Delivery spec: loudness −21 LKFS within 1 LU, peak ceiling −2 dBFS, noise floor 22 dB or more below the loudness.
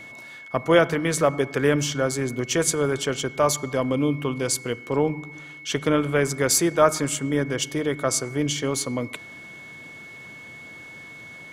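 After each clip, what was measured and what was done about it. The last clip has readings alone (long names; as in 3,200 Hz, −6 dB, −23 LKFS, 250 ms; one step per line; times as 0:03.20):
interfering tone 2,200 Hz; level of the tone −40 dBFS; integrated loudness −23.5 LKFS; sample peak −3.5 dBFS; target loudness −21.0 LKFS
→ notch filter 2,200 Hz, Q 30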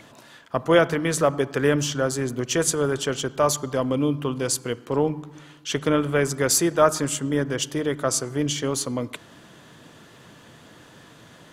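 interfering tone none found; integrated loudness −23.5 LKFS; sample peak −3.5 dBFS; target loudness −21.0 LKFS
→ level +2.5 dB
brickwall limiter −2 dBFS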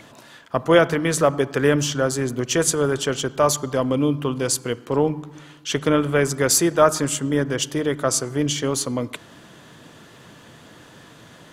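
integrated loudness −21.0 LKFS; sample peak −2.0 dBFS; background noise floor −47 dBFS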